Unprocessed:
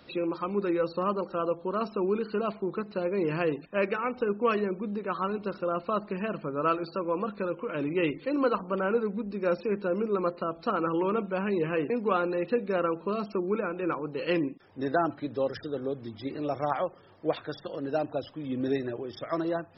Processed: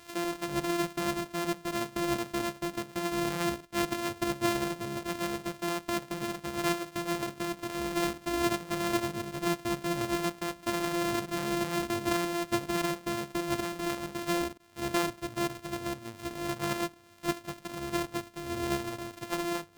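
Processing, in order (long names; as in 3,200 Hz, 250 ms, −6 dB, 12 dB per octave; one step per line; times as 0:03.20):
samples sorted by size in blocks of 128 samples
one half of a high-frequency compander encoder only
level −3 dB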